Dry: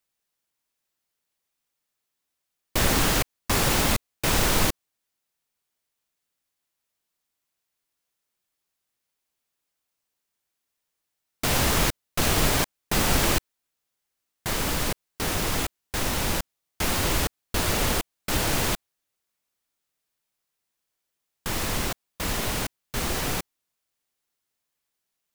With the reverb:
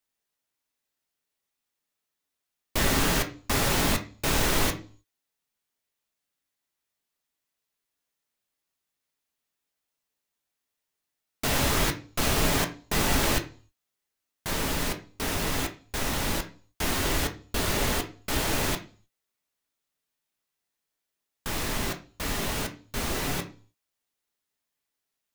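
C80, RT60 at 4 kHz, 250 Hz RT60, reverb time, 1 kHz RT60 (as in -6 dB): 18.5 dB, 0.45 s, 0.50 s, 0.40 s, 0.40 s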